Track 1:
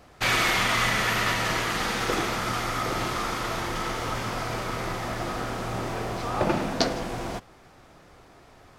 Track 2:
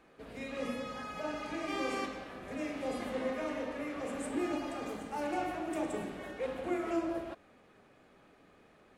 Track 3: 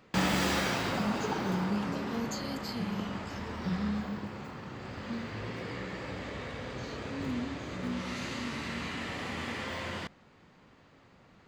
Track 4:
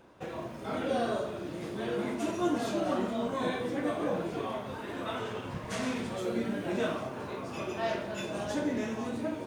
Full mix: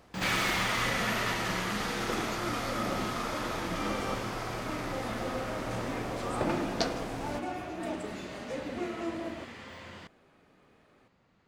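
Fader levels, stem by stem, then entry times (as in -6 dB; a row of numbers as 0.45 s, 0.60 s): -6.5 dB, -2.5 dB, -9.0 dB, -10.0 dB; 0.00 s, 2.10 s, 0.00 s, 0.00 s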